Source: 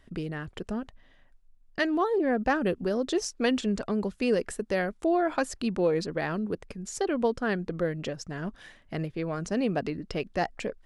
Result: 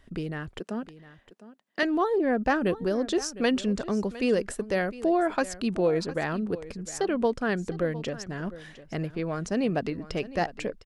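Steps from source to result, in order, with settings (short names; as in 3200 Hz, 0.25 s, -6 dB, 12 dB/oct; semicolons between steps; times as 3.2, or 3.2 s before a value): 0.6–1.83 HPF 200 Hz 24 dB/oct; echo 0.707 s -16.5 dB; gain +1 dB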